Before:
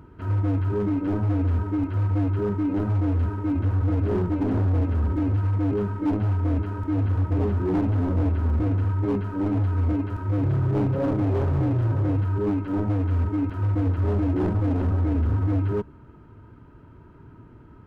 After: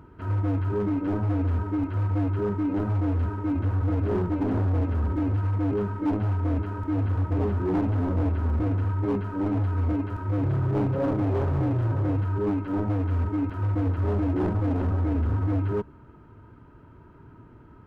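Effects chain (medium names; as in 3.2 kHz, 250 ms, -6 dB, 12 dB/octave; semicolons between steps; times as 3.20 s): peaking EQ 990 Hz +3 dB 2.5 oct; trim -2.5 dB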